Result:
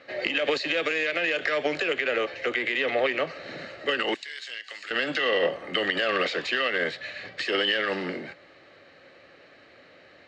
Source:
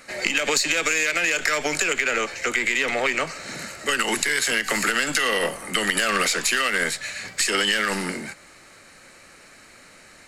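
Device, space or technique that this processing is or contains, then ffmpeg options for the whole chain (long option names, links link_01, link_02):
guitar cabinet: -filter_complex "[0:a]asettb=1/sr,asplit=3[link_01][link_02][link_03];[link_01]atrim=end=4.144[link_04];[link_02]atrim=start=4.14:end=4.91,asetpts=PTS-STARTPTS,afade=type=in:duration=0.004:curve=qsin,afade=type=out:start_time=0.766:duration=0.004:curve=qsin,aderivative[link_05];[link_03]atrim=start=4.906[link_06];[link_04][link_05]acrossfade=duration=0.004:curve1=hsin:curve2=qsin[link_07];[link_07][link_06]acrossfade=duration=0.004:curve1=qsin:curve2=hsin,highpass=110,equalizer=frequency=140:width_type=q:width=4:gain=-4,equalizer=frequency=210:width_type=q:width=4:gain=-10,equalizer=frequency=550:width_type=q:width=4:gain=4,equalizer=frequency=950:width_type=q:width=4:gain=-8,equalizer=frequency=1400:width_type=q:width=4:gain=-7,equalizer=frequency=2300:width_type=q:width=4:gain=-7,lowpass=frequency=3500:width=0.5412,lowpass=frequency=3500:width=1.3066"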